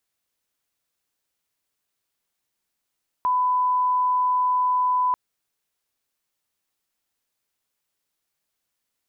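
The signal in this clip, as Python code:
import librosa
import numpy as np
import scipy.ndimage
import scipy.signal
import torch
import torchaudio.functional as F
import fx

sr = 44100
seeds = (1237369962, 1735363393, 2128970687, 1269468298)

y = fx.lineup_tone(sr, length_s=1.89, level_db=-18.0)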